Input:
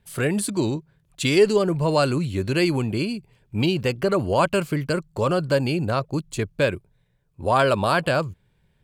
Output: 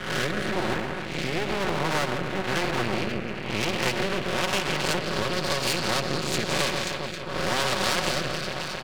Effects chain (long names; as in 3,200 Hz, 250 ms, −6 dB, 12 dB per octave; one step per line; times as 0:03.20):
peak hold with a rise ahead of every peak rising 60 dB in 0.49 s
low-shelf EQ 190 Hz +5.5 dB
comb filter 5.4 ms, depth 90%
downward compressor 4 to 1, threshold −21 dBFS, peak gain reduction 12.5 dB
on a send: delay that swaps between a low-pass and a high-pass 134 ms, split 1,100 Hz, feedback 74%, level −8 dB
on the sum: dynamic equaliser 570 Hz, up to +4 dB, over −36 dBFS, Q 0.71
single-tap delay 171 ms −12 dB
in parallel at −0.5 dB: speech leveller within 4 dB 0.5 s
on the sum: low-pass filter sweep 1,600 Hz → 4,500 Hz, 0:03.22–0:05.63
half-wave rectification
rotating-speaker cabinet horn 1 Hz
every bin compressed towards the loudest bin 2 to 1
level −5.5 dB